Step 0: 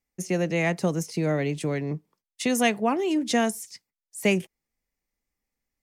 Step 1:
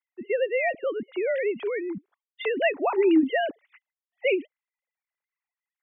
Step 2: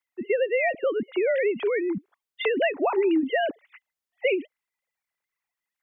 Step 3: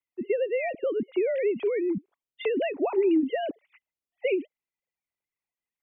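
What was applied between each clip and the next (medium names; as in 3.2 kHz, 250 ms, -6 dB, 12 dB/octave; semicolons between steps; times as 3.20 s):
formants replaced by sine waves
compression 6:1, threshold -25 dBFS, peak gain reduction 9.5 dB; trim +5 dB
FFT filter 370 Hz 0 dB, 1.7 kHz -13 dB, 2.4 kHz -5 dB, 4 kHz -10 dB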